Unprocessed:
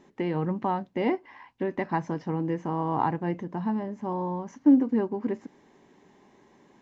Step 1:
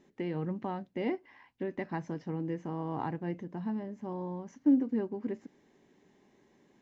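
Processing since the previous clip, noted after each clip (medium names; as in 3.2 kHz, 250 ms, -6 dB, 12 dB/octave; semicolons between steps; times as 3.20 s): peaking EQ 980 Hz -6.5 dB 0.85 oct; trim -6 dB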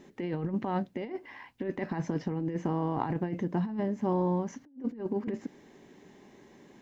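compressor with a negative ratio -37 dBFS, ratio -0.5; trim +6 dB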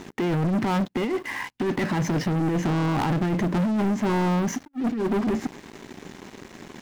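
peaking EQ 590 Hz -5.5 dB 0.99 oct; waveshaping leveller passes 5; trim -1 dB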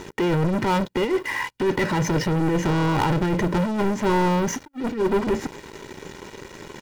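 comb 2.1 ms, depth 51%; trim +3 dB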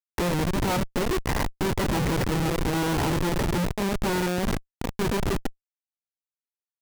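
coarse spectral quantiser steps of 30 dB; Schmitt trigger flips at -22.5 dBFS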